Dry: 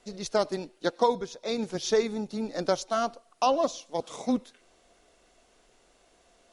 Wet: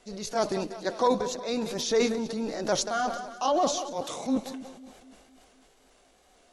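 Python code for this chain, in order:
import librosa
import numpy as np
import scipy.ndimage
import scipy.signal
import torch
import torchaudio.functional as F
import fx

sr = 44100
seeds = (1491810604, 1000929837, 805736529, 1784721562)

y = fx.pitch_ramps(x, sr, semitones=1.5, every_ms=454)
y = fx.echo_split(y, sr, split_hz=340.0, low_ms=252, high_ms=185, feedback_pct=52, wet_db=-16.0)
y = fx.transient(y, sr, attack_db=-5, sustain_db=7)
y = y * 10.0 ** (2.0 / 20.0)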